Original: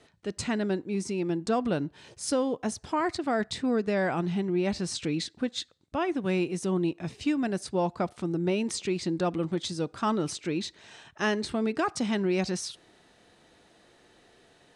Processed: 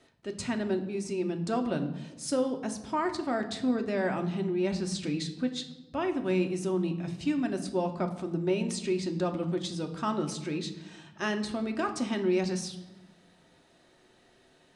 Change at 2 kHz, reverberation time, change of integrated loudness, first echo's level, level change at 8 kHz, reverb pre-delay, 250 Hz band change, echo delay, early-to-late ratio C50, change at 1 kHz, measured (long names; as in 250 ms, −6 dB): −3.0 dB, 1.0 s, −1.5 dB, no echo audible, −3.0 dB, 3 ms, −1.5 dB, no echo audible, 11.0 dB, −2.5 dB